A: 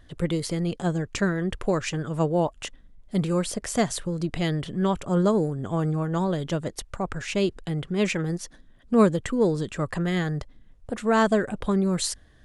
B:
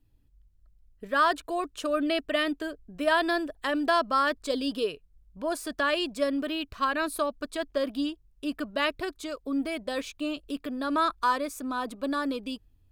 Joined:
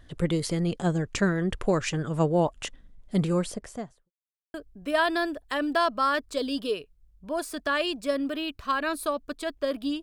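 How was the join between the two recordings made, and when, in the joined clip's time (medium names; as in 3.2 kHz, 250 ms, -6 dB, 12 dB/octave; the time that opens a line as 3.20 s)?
A
3.17–4.11 s: studio fade out
4.11–4.54 s: mute
4.54 s: go over to B from 2.67 s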